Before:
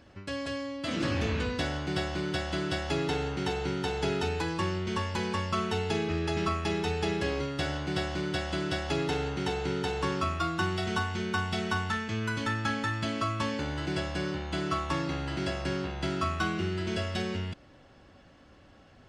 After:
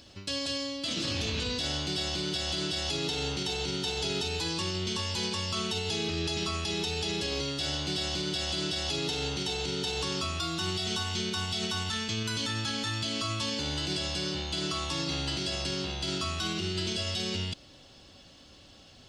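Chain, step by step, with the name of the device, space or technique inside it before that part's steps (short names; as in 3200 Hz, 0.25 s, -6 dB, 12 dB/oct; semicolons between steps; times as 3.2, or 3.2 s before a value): over-bright horn tweeter (resonant high shelf 2600 Hz +12 dB, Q 1.5; limiter -22.5 dBFS, peak gain reduction 11 dB)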